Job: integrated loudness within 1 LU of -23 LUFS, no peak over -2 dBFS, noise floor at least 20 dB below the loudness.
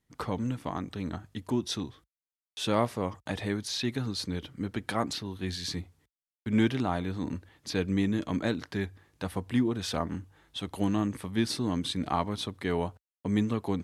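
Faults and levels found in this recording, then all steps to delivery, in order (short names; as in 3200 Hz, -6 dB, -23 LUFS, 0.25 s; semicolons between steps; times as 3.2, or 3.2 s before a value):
loudness -32.0 LUFS; peak -11.5 dBFS; loudness target -23.0 LUFS
-> gain +9 dB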